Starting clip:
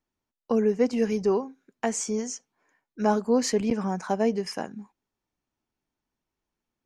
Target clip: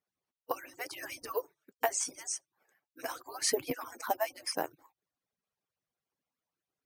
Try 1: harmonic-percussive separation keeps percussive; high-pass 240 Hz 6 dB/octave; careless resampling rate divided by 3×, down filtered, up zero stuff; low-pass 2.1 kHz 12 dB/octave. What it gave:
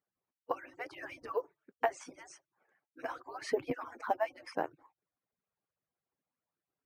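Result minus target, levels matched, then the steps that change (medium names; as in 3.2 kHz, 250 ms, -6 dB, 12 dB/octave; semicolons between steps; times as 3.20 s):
8 kHz band -17.5 dB
change: low-pass 8.1 kHz 12 dB/octave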